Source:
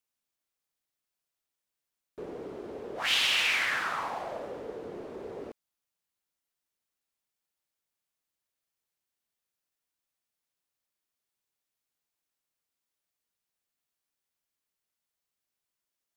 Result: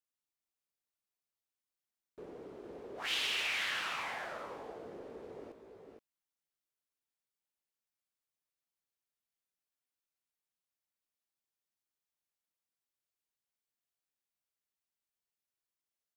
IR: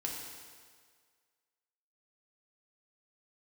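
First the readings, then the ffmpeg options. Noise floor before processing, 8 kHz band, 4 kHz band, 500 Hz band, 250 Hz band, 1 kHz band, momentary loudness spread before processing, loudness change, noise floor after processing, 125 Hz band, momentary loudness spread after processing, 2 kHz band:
under -85 dBFS, -7.5 dB, -7.5 dB, -7.5 dB, -7.5 dB, -7.5 dB, 19 LU, -8.0 dB, under -85 dBFS, -7.5 dB, 20 LU, -7.5 dB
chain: -af "aecho=1:1:454|472:0.355|0.355,volume=-8.5dB"

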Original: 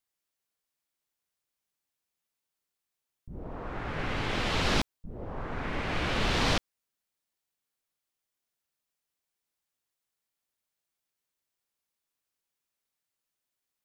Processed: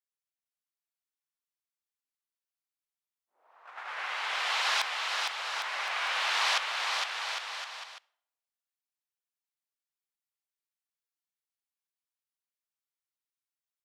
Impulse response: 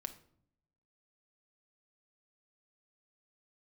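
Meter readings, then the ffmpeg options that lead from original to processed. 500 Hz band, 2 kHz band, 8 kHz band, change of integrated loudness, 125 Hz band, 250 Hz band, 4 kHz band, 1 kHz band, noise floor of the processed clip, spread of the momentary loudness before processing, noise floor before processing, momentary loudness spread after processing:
-9.5 dB, +4.0 dB, +4.0 dB, +1.0 dB, under -40 dB, under -30 dB, +4.0 dB, +2.5 dB, under -85 dBFS, 15 LU, under -85 dBFS, 14 LU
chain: -filter_complex "[0:a]agate=range=-14dB:threshold=-35dB:ratio=16:detection=peak,highpass=f=810:w=0.5412,highpass=f=810:w=1.3066,aecho=1:1:460|805|1064|1258|1403:0.631|0.398|0.251|0.158|0.1,asplit=2[a][b];[1:a]atrim=start_sample=2205,asetrate=30870,aresample=44100[c];[b][c]afir=irnorm=-1:irlink=0,volume=-11dB[d];[a][d]amix=inputs=2:normalize=0"

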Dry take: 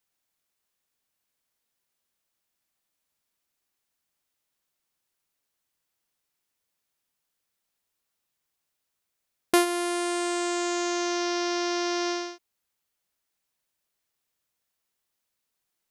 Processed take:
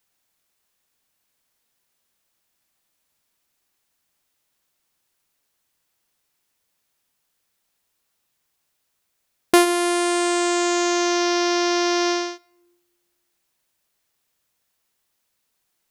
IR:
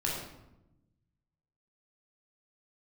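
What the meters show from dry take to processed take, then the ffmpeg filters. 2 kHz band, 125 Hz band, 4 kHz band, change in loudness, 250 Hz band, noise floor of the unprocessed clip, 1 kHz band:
+7.0 dB, n/a, +7.0 dB, +7.0 dB, +7.0 dB, -82 dBFS, +7.0 dB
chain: -filter_complex "[0:a]acontrast=89,asplit=2[a][b];[1:a]atrim=start_sample=2205[c];[b][c]afir=irnorm=-1:irlink=0,volume=-27.5dB[d];[a][d]amix=inputs=2:normalize=0"

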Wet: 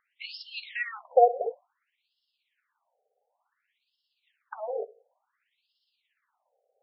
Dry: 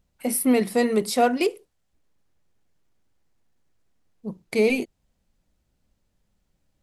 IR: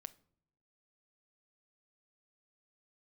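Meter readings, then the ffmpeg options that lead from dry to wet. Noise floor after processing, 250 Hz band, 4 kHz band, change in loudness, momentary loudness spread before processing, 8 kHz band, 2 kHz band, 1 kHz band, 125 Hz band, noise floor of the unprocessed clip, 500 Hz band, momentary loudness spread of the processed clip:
-82 dBFS, under -40 dB, n/a, -5.5 dB, 17 LU, under -40 dB, -6.5 dB, +0.5 dB, under -40 dB, -73 dBFS, -5.0 dB, 19 LU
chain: -filter_complex "[0:a]acompressor=threshold=-26dB:ratio=10,tremolo=f=17:d=0.44,asplit=2[a][b];[1:a]atrim=start_sample=2205,asetrate=70560,aresample=44100[c];[b][c]afir=irnorm=-1:irlink=0,volume=17.5dB[d];[a][d]amix=inputs=2:normalize=0,afftfilt=real='re*between(b*sr/1024,550*pow(3900/550,0.5+0.5*sin(2*PI*0.56*pts/sr))/1.41,550*pow(3900/550,0.5+0.5*sin(2*PI*0.56*pts/sr))*1.41)':imag='im*between(b*sr/1024,550*pow(3900/550,0.5+0.5*sin(2*PI*0.56*pts/sr))/1.41,550*pow(3900/550,0.5+0.5*sin(2*PI*0.56*pts/sr))*1.41)':win_size=1024:overlap=0.75,volume=2.5dB"

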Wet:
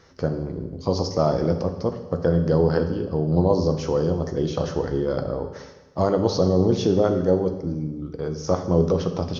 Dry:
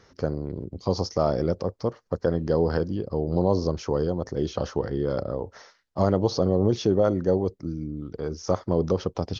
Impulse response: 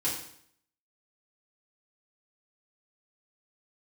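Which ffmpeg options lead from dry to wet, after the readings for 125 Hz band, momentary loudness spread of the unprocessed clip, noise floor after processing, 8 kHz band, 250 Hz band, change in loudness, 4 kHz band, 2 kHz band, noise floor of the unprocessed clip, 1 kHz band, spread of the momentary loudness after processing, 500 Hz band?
+4.0 dB, 10 LU, -42 dBFS, n/a, +3.5 dB, +3.0 dB, +2.5 dB, +3.0 dB, -64 dBFS, +2.5 dB, 10 LU, +3.0 dB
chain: -filter_complex "[0:a]asplit=2[a][b];[1:a]atrim=start_sample=2205,asetrate=23373,aresample=44100[c];[b][c]afir=irnorm=-1:irlink=0,volume=-15dB[d];[a][d]amix=inputs=2:normalize=0"

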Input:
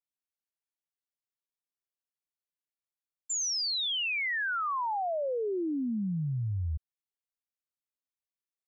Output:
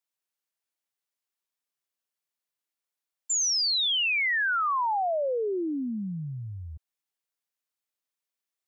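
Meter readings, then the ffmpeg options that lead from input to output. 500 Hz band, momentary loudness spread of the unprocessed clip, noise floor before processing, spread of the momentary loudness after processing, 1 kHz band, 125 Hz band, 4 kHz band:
+3.5 dB, 6 LU, under -85 dBFS, 15 LU, +5.0 dB, -4.5 dB, +5.5 dB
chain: -af "highpass=f=370:p=1,volume=5.5dB"

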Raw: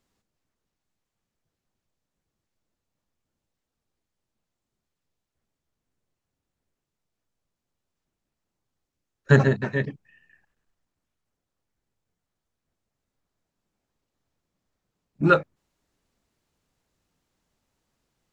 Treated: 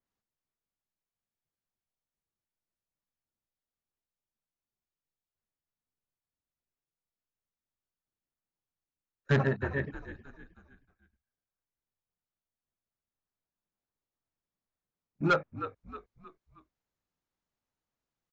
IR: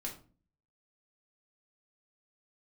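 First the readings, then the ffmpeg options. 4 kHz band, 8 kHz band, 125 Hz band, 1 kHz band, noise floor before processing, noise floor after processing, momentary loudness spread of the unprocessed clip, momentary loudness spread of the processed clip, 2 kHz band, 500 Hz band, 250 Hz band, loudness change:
-4.0 dB, n/a, -9.0 dB, -6.5 dB, -85 dBFS, under -85 dBFS, 10 LU, 20 LU, -7.0 dB, -8.5 dB, -8.5 dB, -9.0 dB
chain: -filter_complex "[0:a]agate=range=-8dB:threshold=-50dB:ratio=16:detection=peak,equalizer=f=1.2k:t=o:w=2.1:g=4,asplit=5[a][b][c][d][e];[b]adelay=314,afreqshift=-53,volume=-13.5dB[f];[c]adelay=628,afreqshift=-106,volume=-21.2dB[g];[d]adelay=942,afreqshift=-159,volume=-29dB[h];[e]adelay=1256,afreqshift=-212,volume=-36.7dB[i];[a][f][g][h][i]amix=inputs=5:normalize=0,acrossover=split=3600[j][k];[j]asoftclip=type=hard:threshold=-10.5dB[l];[k]acompressor=threshold=-58dB:ratio=6[m];[l][m]amix=inputs=2:normalize=0,aresample=16000,aresample=44100,adynamicequalizer=threshold=0.0178:dfrequency=3000:dqfactor=0.7:tfrequency=3000:tqfactor=0.7:attack=5:release=100:ratio=0.375:range=2:mode=cutabove:tftype=highshelf,volume=-8.5dB"

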